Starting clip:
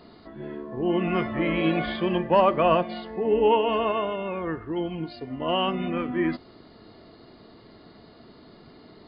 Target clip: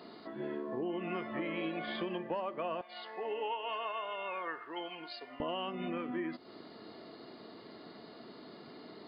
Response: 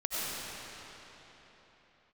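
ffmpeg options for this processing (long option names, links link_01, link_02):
-af "asetnsamples=nb_out_samples=441:pad=0,asendcmd='2.81 highpass f 870;5.4 highpass f 210',highpass=230,acompressor=threshold=-34dB:ratio=10"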